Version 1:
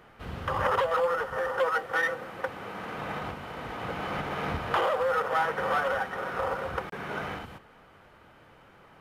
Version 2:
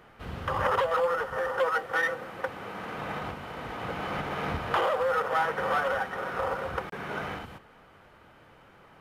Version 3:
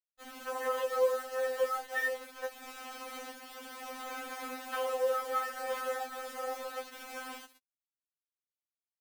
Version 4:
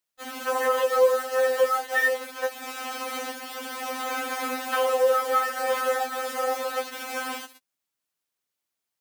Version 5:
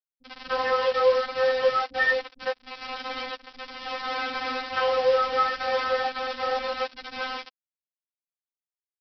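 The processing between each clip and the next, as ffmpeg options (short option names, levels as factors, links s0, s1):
-af anull
-af "aemphasis=mode=production:type=50kf,acrusher=bits=5:mix=0:aa=0.000001,afftfilt=real='re*3.46*eq(mod(b,12),0)':imag='im*3.46*eq(mod(b,12),0)':win_size=2048:overlap=0.75,volume=0.398"
-filter_complex "[0:a]asplit=2[s0][s1];[s1]alimiter=level_in=1.58:limit=0.0631:level=0:latency=1:release=399,volume=0.631,volume=0.794[s2];[s0][s2]amix=inputs=2:normalize=0,highpass=f=100:p=1,volume=2.11"
-filter_complex "[0:a]aresample=11025,acrusher=bits=4:mix=0:aa=0.5,aresample=44100,acrossover=split=280[s0][s1];[s1]adelay=40[s2];[s0][s2]amix=inputs=2:normalize=0"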